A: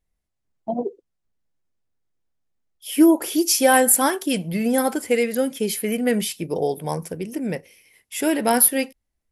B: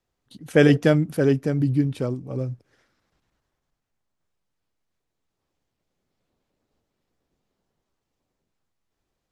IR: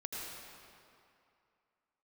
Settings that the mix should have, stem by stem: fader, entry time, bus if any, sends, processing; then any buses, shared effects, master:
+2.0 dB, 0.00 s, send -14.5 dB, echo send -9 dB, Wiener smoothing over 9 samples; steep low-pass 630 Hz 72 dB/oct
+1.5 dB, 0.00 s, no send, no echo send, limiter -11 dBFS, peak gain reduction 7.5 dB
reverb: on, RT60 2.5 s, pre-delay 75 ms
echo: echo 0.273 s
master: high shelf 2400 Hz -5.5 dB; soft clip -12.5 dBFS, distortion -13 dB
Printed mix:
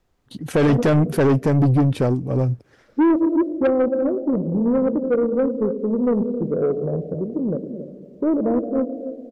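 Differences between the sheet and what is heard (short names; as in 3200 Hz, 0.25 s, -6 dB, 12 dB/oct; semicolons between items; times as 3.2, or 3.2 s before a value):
stem A: send -14.5 dB -> -6 dB; stem B +1.5 dB -> +10.5 dB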